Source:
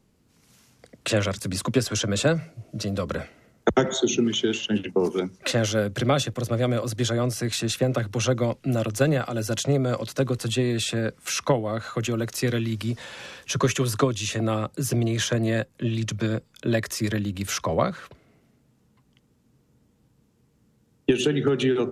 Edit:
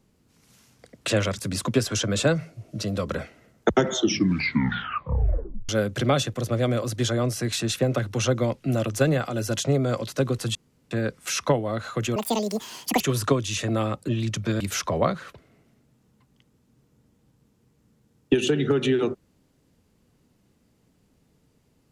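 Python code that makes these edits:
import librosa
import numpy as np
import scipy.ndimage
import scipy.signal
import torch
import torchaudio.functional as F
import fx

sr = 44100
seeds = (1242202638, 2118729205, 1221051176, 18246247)

y = fx.edit(x, sr, fx.tape_stop(start_s=3.91, length_s=1.78),
    fx.room_tone_fill(start_s=10.55, length_s=0.36),
    fx.speed_span(start_s=12.16, length_s=1.56, speed=1.85),
    fx.cut(start_s=14.8, length_s=1.03),
    fx.cut(start_s=16.35, length_s=1.02), tone=tone)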